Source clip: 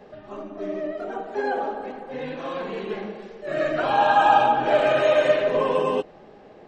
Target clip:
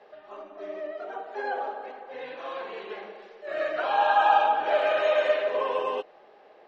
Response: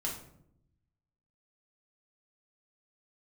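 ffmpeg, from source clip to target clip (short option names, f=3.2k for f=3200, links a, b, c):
-filter_complex "[0:a]acrossover=split=420 5800:gain=0.0708 1 0.0708[a][b][c];[a][b][c]amix=inputs=3:normalize=0,volume=-3dB"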